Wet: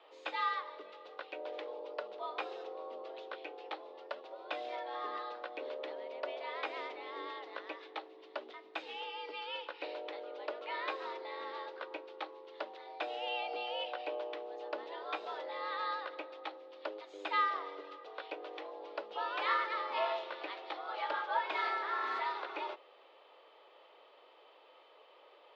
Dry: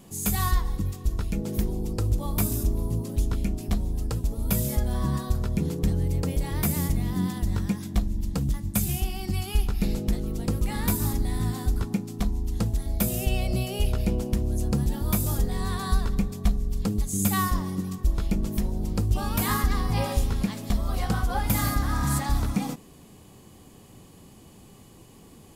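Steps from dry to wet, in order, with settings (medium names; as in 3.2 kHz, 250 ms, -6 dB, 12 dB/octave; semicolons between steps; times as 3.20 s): mistuned SSB +110 Hz 410–3600 Hz; trim -2.5 dB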